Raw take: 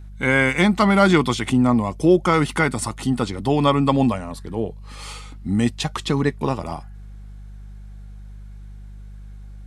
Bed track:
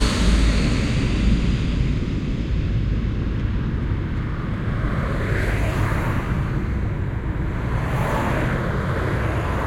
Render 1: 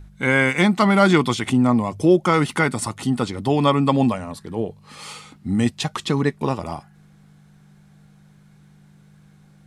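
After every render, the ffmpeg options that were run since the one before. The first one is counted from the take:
-af "bandreject=f=50:t=h:w=4,bandreject=f=100:t=h:w=4"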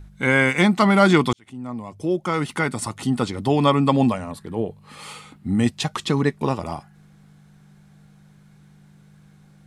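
-filter_complex "[0:a]asettb=1/sr,asplit=3[s0][s1][s2];[s0]atrim=end=4.314[s3];[s1]atrim=start=4.31:end=5.64,asetpts=PTS-STARTPTS,afade=t=in:d=0.004:c=qsin,afade=t=out:st=1.326:d=0.004:c=qsin,equalizer=f=5600:w=1.5:g=-6[s4];[s2]atrim=start=5.636[s5];[s3][s4]acrossfade=d=0.004:c1=hsin:c2=qsin[s6];[s6][s5]acrossfade=d=0.004:c1=qsin:c2=hsin,asplit=2[s7][s8];[s7]atrim=end=1.33,asetpts=PTS-STARTPTS,afade=t=out:st=1.326:d=0.004:c=hsin[s9];[s8]atrim=start=1.33,asetpts=PTS-STARTPTS,afade=t=in:d=1.91[s10];[s9][s10]concat=n=2:v=0:a=1"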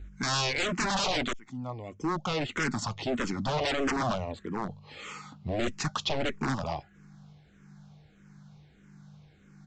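-filter_complex "[0:a]aresample=16000,aeval=exprs='0.0944*(abs(mod(val(0)/0.0944+3,4)-2)-1)':c=same,aresample=44100,asplit=2[s0][s1];[s1]afreqshift=-1.6[s2];[s0][s2]amix=inputs=2:normalize=1"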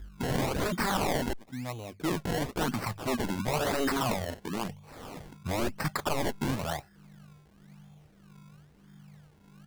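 -af "acrusher=samples=25:mix=1:aa=0.000001:lfo=1:lforange=25:lforate=0.98"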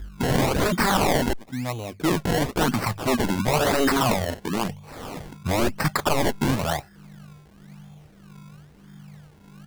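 -af "volume=2.51"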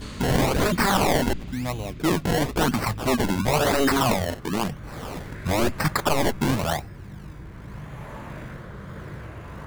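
-filter_complex "[1:a]volume=0.15[s0];[0:a][s0]amix=inputs=2:normalize=0"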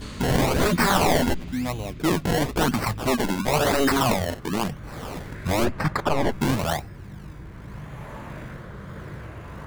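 -filter_complex "[0:a]asettb=1/sr,asplit=3[s0][s1][s2];[s0]atrim=end=0.494[s3];[s1]atrim=start=0.49:end=1.68,asetpts=PTS-STARTPTS,afade=t=in:d=0.004:c=qsin,afade=t=out:st=1.186:d=0.004:c=qsin,asplit=2[s4][s5];[s5]adelay=12,volume=0.501[s6];[s4][s6]amix=inputs=2:normalize=0,atrim=end_sample=52479[s7];[s2]atrim=start=1.676[s8];[s3][s7]acrossfade=d=0.004:c1=hsin:c2=qsin[s9];[s9][s8]acrossfade=d=0.004:c1=qsin:c2=hsin,asettb=1/sr,asplit=3[s10][s11][s12];[s10]atrim=end=3.114[s13];[s11]atrim=start=3.11:end=3.52,asetpts=PTS-STARTPTS,afade=t=in:d=0.004:c=qsin,afade=t=out:st=0.406:d=0.004:c=qsin,equalizer=f=90:t=o:w=0.77:g=-14[s14];[s12]atrim=start=3.516[s15];[s13][s14]acrossfade=d=0.004:c1=hsin:c2=qsin[s16];[s16][s15]acrossfade=d=0.004:c1=qsin:c2=hsin,asplit=3[s17][s18][s19];[s17]afade=t=out:st=5.64:d=0.02[s20];[s18]lowpass=f=2200:p=1,afade=t=in:st=5.64:d=0.02,afade=t=out:st=6.31:d=0.02[s21];[s19]afade=t=in:st=6.31:d=0.02[s22];[s20][s21][s22]amix=inputs=3:normalize=0"

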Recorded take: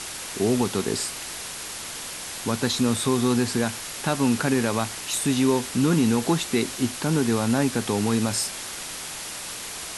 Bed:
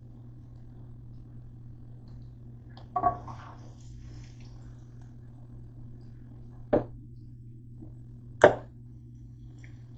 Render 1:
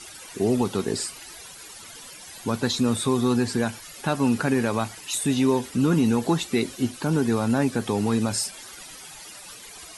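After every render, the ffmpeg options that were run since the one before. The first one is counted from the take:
-af "afftdn=nr=14:nf=-35"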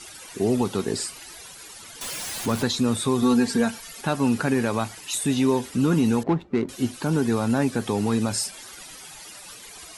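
-filter_complex "[0:a]asettb=1/sr,asplit=3[s0][s1][s2];[s0]atrim=end=2.014[s3];[s1]atrim=start=2.01:end=2.64,asetpts=PTS-STARTPTS,afade=t=in:d=0.004:c=qsin,afade=t=out:st=0.626:d=0.004:c=qsin,aeval=exprs='val(0)+0.5*0.0355*sgn(val(0))':c=same[s4];[s2]atrim=start=2.636[s5];[s3][s4]acrossfade=d=0.004:c1=hsin:c2=qsin[s6];[s6][s5]acrossfade=d=0.004:c1=qsin:c2=hsin,asettb=1/sr,asplit=3[s7][s8][s9];[s7]atrim=end=3.224[s10];[s8]atrim=start=3.22:end=4.01,asetpts=PTS-STARTPTS,afade=t=in:d=0.004:c=qsin,afade=t=out:st=0.786:d=0.004:c=qsin,aecho=1:1:4.4:0.65,atrim=end_sample=34839[s11];[s9]atrim=start=4.006[s12];[s10][s11]acrossfade=d=0.004:c1=hsin:c2=qsin[s13];[s13][s12]acrossfade=d=0.004:c1=qsin:c2=hsin,asettb=1/sr,asplit=3[s14][s15][s16];[s14]atrim=end=6.234[s17];[s15]atrim=start=6.23:end=6.69,asetpts=PTS-STARTPTS,afade=t=in:d=0.004:c=qsin,afade=t=out:st=0.456:d=0.004:c=qsin,adynamicsmooth=sensitivity=1:basefreq=570[s18];[s16]atrim=start=6.686[s19];[s17][s18]acrossfade=d=0.004:c1=hsin:c2=qsin[s20];[s20][s19]acrossfade=d=0.004:c1=qsin:c2=hsin"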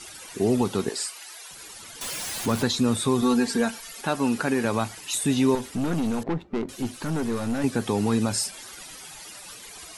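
-filter_complex "[0:a]asettb=1/sr,asplit=3[s0][s1][s2];[s0]atrim=end=0.894[s3];[s1]atrim=start=0.89:end=1.51,asetpts=PTS-STARTPTS,afade=t=in:d=0.004:c=qsin,afade=t=out:st=0.616:d=0.004:c=qsin,highpass=640[s4];[s2]atrim=start=1.506[s5];[s3][s4]acrossfade=d=0.004:c1=hsin:c2=qsin[s6];[s6][s5]acrossfade=d=0.004:c1=qsin:c2=hsin,asettb=1/sr,asplit=3[s7][s8][s9];[s7]atrim=end=3.214[s10];[s8]atrim=start=3.21:end=4.65,asetpts=PTS-STARTPTS,afade=t=in:d=0.004:c=qsin,afade=t=out:st=1.436:d=0.004:c=qsin,equalizer=f=92:w=0.76:g=-9.5[s11];[s9]atrim=start=4.646[s12];[s10][s11]acrossfade=d=0.004:c1=hsin:c2=qsin[s13];[s13][s12]acrossfade=d=0.004:c1=qsin:c2=hsin,asettb=1/sr,asplit=3[s14][s15][s16];[s14]atrim=end=5.554[s17];[s15]atrim=start=5.55:end=7.64,asetpts=PTS-STARTPTS,afade=t=in:d=0.004:c=qsin,afade=t=out:st=2.086:d=0.004:c=qsin,aeval=exprs='(tanh(12.6*val(0)+0.4)-tanh(0.4))/12.6':c=same[s18];[s16]atrim=start=7.636[s19];[s17][s18]acrossfade=d=0.004:c1=hsin:c2=qsin[s20];[s20][s19]acrossfade=d=0.004:c1=qsin:c2=hsin"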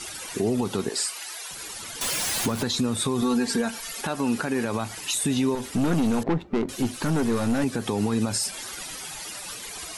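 -filter_complex "[0:a]asplit=2[s0][s1];[s1]acompressor=threshold=0.0355:ratio=6,volume=0.891[s2];[s0][s2]amix=inputs=2:normalize=0,alimiter=limit=0.168:level=0:latency=1:release=99"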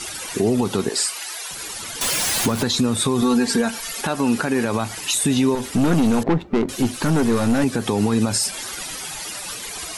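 -af "volume=1.88"

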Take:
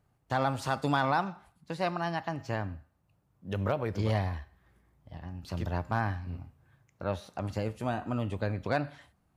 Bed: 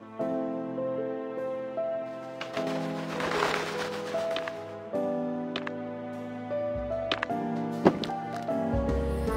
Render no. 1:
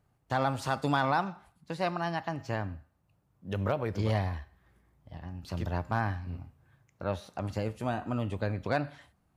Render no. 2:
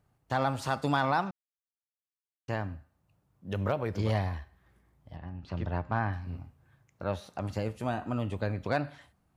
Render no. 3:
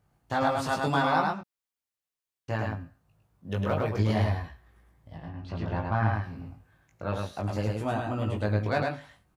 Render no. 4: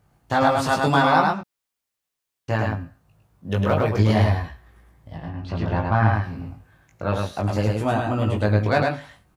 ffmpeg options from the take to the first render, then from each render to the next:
-af anull
-filter_complex "[0:a]asettb=1/sr,asplit=3[s0][s1][s2];[s0]atrim=end=5.164[s3];[s1]atrim=start=5.16:end=6.13,asetpts=PTS-STARTPTS,afade=t=in:d=0.004:c=qsin,afade=t=out:st=0.966:d=0.004:c=qsin,lowpass=3100[s4];[s2]atrim=start=6.126[s5];[s3][s4]acrossfade=d=0.004:c1=hsin:c2=qsin[s6];[s6][s5]acrossfade=d=0.004:c1=qsin:c2=hsin,asplit=3[s7][s8][s9];[s7]atrim=end=1.31,asetpts=PTS-STARTPTS,afade=t=out:st=1.306:d=0.004:c=hsin[s10];[s8]atrim=start=1.31:end=2.48,asetpts=PTS-STARTPTS,volume=0[s11];[s9]atrim=start=2.48,asetpts=PTS-STARTPTS,afade=t=in:d=0.004:c=hsin[s12];[s10][s11][s12]concat=n=3:v=0:a=1"
-filter_complex "[0:a]asplit=2[s0][s1];[s1]adelay=19,volume=0.708[s2];[s0][s2]amix=inputs=2:normalize=0,aecho=1:1:106:0.708"
-af "volume=2.37"

